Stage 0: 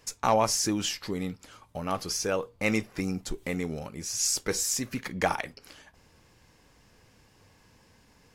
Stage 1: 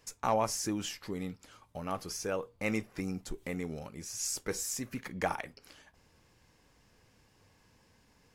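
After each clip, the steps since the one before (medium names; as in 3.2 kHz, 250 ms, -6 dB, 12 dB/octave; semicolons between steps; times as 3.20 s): dynamic bell 4.4 kHz, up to -5 dB, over -46 dBFS, Q 0.99; trim -5.5 dB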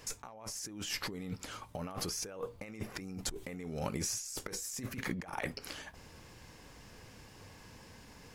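compressor with a negative ratio -45 dBFS, ratio -1; trim +3.5 dB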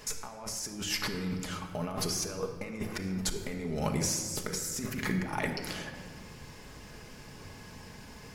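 simulated room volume 2700 m³, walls mixed, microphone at 1.4 m; trim +4 dB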